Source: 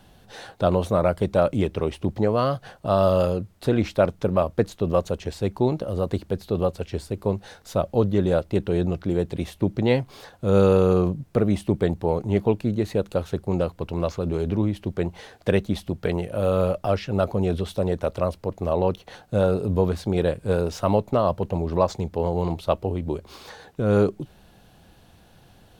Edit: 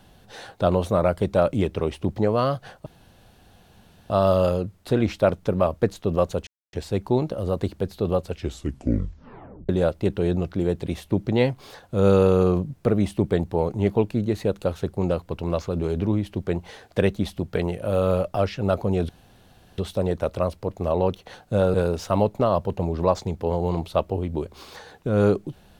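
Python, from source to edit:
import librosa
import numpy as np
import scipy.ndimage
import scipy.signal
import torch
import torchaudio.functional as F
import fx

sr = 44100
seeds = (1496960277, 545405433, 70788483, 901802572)

y = fx.edit(x, sr, fx.insert_room_tone(at_s=2.86, length_s=1.24),
    fx.insert_silence(at_s=5.23, length_s=0.26),
    fx.tape_stop(start_s=6.82, length_s=1.37),
    fx.insert_room_tone(at_s=17.59, length_s=0.69),
    fx.cut(start_s=19.55, length_s=0.92), tone=tone)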